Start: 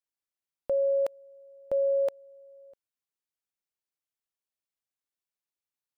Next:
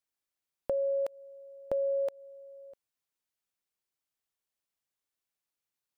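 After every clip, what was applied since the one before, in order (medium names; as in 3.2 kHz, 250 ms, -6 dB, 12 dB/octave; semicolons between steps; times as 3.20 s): compression, threshold -31 dBFS, peak gain reduction 7 dB; trim +2.5 dB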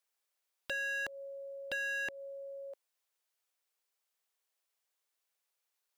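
inverse Chebyshev high-pass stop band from 200 Hz, stop band 40 dB; wavefolder -35 dBFS; trim +4.5 dB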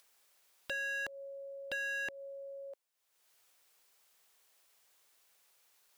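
upward compressor, threshold -54 dBFS; trim -1 dB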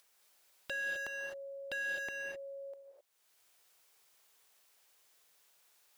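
gated-style reverb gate 280 ms rising, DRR 1.5 dB; trim -1.5 dB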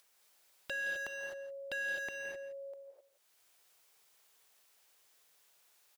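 delay 168 ms -14 dB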